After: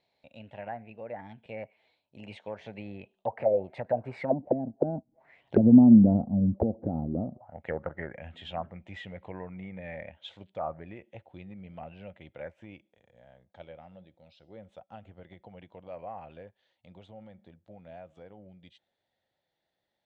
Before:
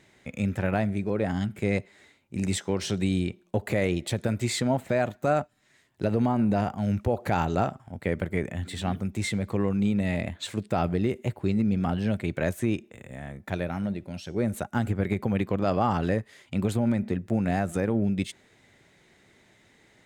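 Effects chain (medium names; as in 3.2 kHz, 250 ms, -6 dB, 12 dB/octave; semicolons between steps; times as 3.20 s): Doppler pass-by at 5.84 s, 28 m/s, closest 13 m; high-order bell 680 Hz +11.5 dB 1.1 oct; touch-sensitive low-pass 250–4200 Hz down, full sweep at -25 dBFS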